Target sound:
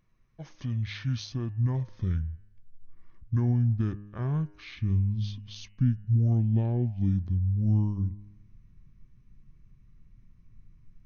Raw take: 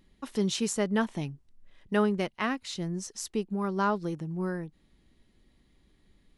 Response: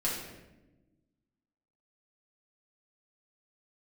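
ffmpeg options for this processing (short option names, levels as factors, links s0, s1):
-af "equalizer=f=650:t=o:w=0.59:g=5.5,alimiter=limit=0.1:level=0:latency=1:release=144,bandreject=f=177.7:t=h:w=4,bandreject=f=355.4:t=h:w=4,bandreject=f=533.1:t=h:w=4,bandreject=f=710.8:t=h:w=4,bandreject=f=888.5:t=h:w=4,bandreject=f=1066.2:t=h:w=4,bandreject=f=1243.9:t=h:w=4,bandreject=f=1421.6:t=h:w=4,bandreject=f=1599.3:t=h:w=4,bandreject=f=1777:t=h:w=4,bandreject=f=1954.7:t=h:w=4,bandreject=f=2132.4:t=h:w=4,bandreject=f=2310.1:t=h:w=4,bandreject=f=2487.8:t=h:w=4,bandreject=f=2665.5:t=h:w=4,bandreject=f=2843.2:t=h:w=4,bandreject=f=3020.9:t=h:w=4,bandreject=f=3198.6:t=h:w=4,bandreject=f=3376.3:t=h:w=4,bandreject=f=3554:t=h:w=4,bandreject=f=3731.7:t=h:w=4,bandreject=f=3909.4:t=h:w=4,bandreject=f=4087.1:t=h:w=4,bandreject=f=4264.8:t=h:w=4,bandreject=f=4442.5:t=h:w=4,bandreject=f=4620.2:t=h:w=4,bandreject=f=4797.9:t=h:w=4,bandreject=f=4975.6:t=h:w=4,bandreject=f=5153.3:t=h:w=4,asetrate=25442,aresample=44100,asubboost=boost=9:cutoff=190,volume=0.447"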